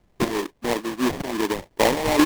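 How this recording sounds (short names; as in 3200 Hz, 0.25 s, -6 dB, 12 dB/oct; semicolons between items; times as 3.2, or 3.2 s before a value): phasing stages 4, 2.9 Hz, lowest notch 420–1100 Hz; aliases and images of a low sample rate 1400 Hz, jitter 20%; random-step tremolo 4.1 Hz; Nellymoser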